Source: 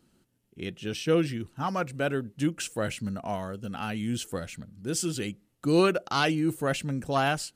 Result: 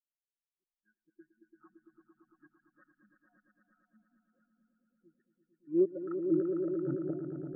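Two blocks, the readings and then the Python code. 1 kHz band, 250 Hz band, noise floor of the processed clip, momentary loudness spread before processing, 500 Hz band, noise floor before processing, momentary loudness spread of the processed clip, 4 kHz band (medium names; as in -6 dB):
-29.5 dB, -7.0 dB, under -85 dBFS, 11 LU, -7.0 dB, -72 dBFS, 6 LU, under -40 dB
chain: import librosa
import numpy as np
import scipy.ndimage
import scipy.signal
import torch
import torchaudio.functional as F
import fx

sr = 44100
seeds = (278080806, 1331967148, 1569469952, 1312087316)

p1 = fx.graphic_eq_10(x, sr, hz=(125, 250, 500, 1000, 4000), db=(6, 12, -5, -4, -6))
p2 = fx.filter_lfo_lowpass(p1, sr, shape='square', hz=2.5, low_hz=570.0, high_hz=1700.0, q=1.9)
p3 = fx.high_shelf_res(p2, sr, hz=2200.0, db=-9.0, q=3.0)
p4 = p3 + 0.59 * np.pad(p3, (int(5.5 * sr / 1000.0), 0))[:len(p3)]
p5 = fx.vibrato(p4, sr, rate_hz=0.83, depth_cents=10.0)
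p6 = fx.step_gate(p5, sr, bpm=164, pattern='x.xx.xx..xxx.x.', floor_db=-60.0, edge_ms=4.5)
p7 = fx.filter_sweep_bandpass(p6, sr, from_hz=6400.0, to_hz=520.0, start_s=4.99, end_s=7.34, q=3.1)
p8 = fx.dmg_noise_colour(p7, sr, seeds[0], colour='brown', level_db=-78.0)
p9 = fx.gate_flip(p8, sr, shuts_db=-28.0, range_db=-28)
p10 = p9 + fx.echo_swell(p9, sr, ms=113, loudest=5, wet_db=-4, dry=0)
p11 = fx.spectral_expand(p10, sr, expansion=2.5)
y = p11 * librosa.db_to_amplitude(7.5)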